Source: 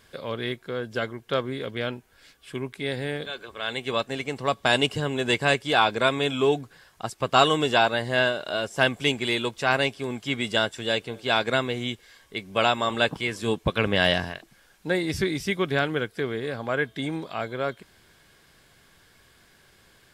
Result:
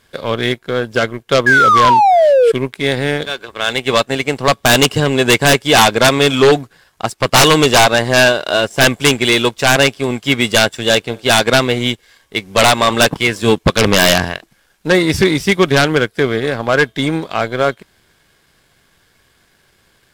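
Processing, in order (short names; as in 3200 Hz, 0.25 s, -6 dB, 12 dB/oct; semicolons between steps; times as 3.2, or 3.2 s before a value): painted sound fall, 1.46–2.52, 440–1700 Hz -23 dBFS; power-law curve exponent 1.4; sine folder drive 18 dB, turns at -3.5 dBFS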